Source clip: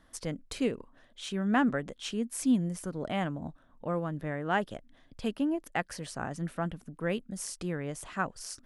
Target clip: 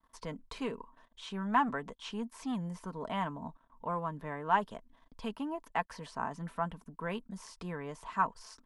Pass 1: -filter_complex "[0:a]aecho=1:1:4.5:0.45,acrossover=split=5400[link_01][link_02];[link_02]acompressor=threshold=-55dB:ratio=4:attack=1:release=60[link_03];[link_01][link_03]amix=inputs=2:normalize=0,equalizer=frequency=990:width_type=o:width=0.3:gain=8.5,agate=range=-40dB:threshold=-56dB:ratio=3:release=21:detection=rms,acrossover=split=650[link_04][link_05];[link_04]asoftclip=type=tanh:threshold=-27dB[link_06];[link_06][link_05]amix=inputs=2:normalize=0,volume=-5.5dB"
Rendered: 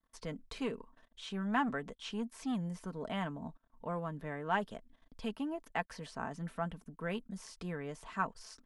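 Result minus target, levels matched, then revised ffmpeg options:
1,000 Hz band −3.0 dB
-filter_complex "[0:a]aecho=1:1:4.5:0.45,acrossover=split=5400[link_01][link_02];[link_02]acompressor=threshold=-55dB:ratio=4:attack=1:release=60[link_03];[link_01][link_03]amix=inputs=2:normalize=0,equalizer=frequency=990:width_type=o:width=0.3:gain=20,agate=range=-40dB:threshold=-56dB:ratio=3:release=21:detection=rms,acrossover=split=650[link_04][link_05];[link_04]asoftclip=type=tanh:threshold=-27dB[link_06];[link_06][link_05]amix=inputs=2:normalize=0,volume=-5.5dB"

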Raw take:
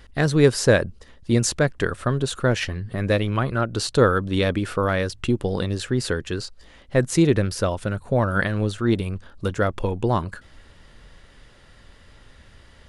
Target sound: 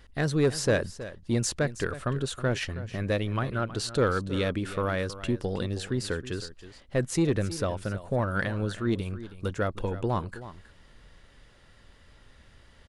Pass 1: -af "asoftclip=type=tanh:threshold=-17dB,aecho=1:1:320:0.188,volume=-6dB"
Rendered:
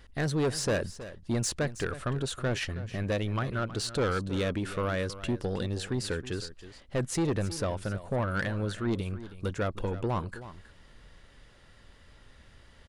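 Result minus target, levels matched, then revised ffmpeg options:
soft clipping: distortion +9 dB
-af "asoftclip=type=tanh:threshold=-9dB,aecho=1:1:320:0.188,volume=-6dB"

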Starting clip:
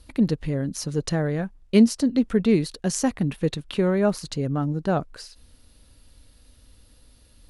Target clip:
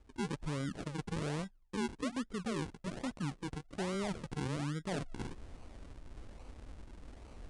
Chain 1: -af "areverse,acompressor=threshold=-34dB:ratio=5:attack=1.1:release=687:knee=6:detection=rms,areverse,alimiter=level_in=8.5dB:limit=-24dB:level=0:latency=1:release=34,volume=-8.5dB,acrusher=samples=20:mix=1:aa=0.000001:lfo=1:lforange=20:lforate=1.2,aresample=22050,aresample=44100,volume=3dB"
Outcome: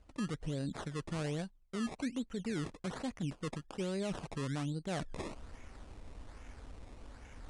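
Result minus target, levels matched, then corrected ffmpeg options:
sample-and-hold swept by an LFO: distortion −7 dB
-af "areverse,acompressor=threshold=-34dB:ratio=5:attack=1.1:release=687:knee=6:detection=rms,areverse,alimiter=level_in=8.5dB:limit=-24dB:level=0:latency=1:release=34,volume=-8.5dB,acrusher=samples=49:mix=1:aa=0.000001:lfo=1:lforange=49:lforate=1.2,aresample=22050,aresample=44100,volume=3dB"

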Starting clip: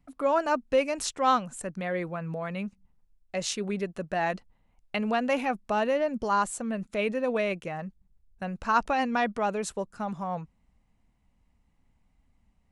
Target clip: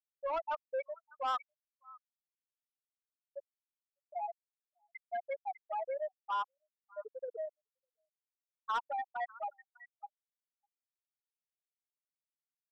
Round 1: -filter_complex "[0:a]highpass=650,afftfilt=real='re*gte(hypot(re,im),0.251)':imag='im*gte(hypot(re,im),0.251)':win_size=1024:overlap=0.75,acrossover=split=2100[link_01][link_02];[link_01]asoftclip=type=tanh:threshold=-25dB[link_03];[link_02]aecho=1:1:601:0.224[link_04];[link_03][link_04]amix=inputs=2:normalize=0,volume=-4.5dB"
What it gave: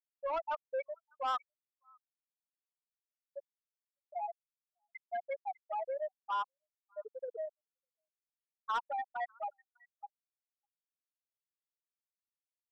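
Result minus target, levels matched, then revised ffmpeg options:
echo-to-direct −9 dB
-filter_complex "[0:a]highpass=650,afftfilt=real='re*gte(hypot(re,im),0.251)':imag='im*gte(hypot(re,im),0.251)':win_size=1024:overlap=0.75,acrossover=split=2100[link_01][link_02];[link_01]asoftclip=type=tanh:threshold=-25dB[link_03];[link_02]aecho=1:1:601:0.631[link_04];[link_03][link_04]amix=inputs=2:normalize=0,volume=-4.5dB"

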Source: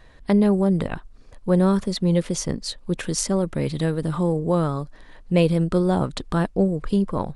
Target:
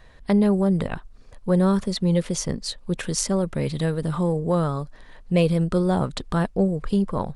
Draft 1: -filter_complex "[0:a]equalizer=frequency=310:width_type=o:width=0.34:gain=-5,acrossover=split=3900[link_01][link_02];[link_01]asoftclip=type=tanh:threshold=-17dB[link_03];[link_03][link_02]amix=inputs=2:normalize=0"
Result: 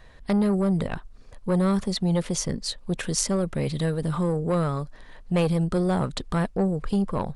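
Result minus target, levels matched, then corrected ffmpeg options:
soft clipping: distortion +15 dB
-filter_complex "[0:a]equalizer=frequency=310:width_type=o:width=0.34:gain=-5,acrossover=split=3900[link_01][link_02];[link_01]asoftclip=type=tanh:threshold=-6.5dB[link_03];[link_03][link_02]amix=inputs=2:normalize=0"

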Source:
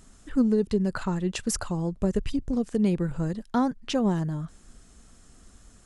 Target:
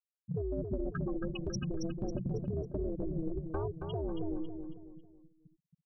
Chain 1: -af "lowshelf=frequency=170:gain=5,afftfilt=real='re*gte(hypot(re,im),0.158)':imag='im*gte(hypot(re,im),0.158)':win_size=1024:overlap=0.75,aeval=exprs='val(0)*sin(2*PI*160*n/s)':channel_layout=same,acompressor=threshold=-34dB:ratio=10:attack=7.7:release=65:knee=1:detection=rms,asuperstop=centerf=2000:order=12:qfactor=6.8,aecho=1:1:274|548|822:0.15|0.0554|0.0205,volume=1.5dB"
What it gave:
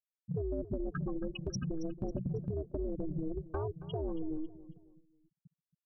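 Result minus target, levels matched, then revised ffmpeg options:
echo-to-direct −10.5 dB
-af "lowshelf=frequency=170:gain=5,afftfilt=real='re*gte(hypot(re,im),0.158)':imag='im*gte(hypot(re,im),0.158)':win_size=1024:overlap=0.75,aeval=exprs='val(0)*sin(2*PI*160*n/s)':channel_layout=same,acompressor=threshold=-34dB:ratio=10:attack=7.7:release=65:knee=1:detection=rms,asuperstop=centerf=2000:order=12:qfactor=6.8,aecho=1:1:274|548|822|1096:0.501|0.185|0.0686|0.0254,volume=1.5dB"

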